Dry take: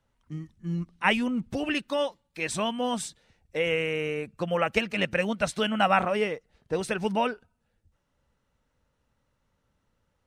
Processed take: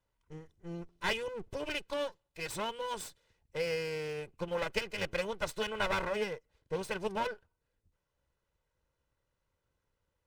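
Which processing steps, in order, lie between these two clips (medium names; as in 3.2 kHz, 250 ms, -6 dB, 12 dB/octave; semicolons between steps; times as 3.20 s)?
comb filter that takes the minimum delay 2 ms; trim -7 dB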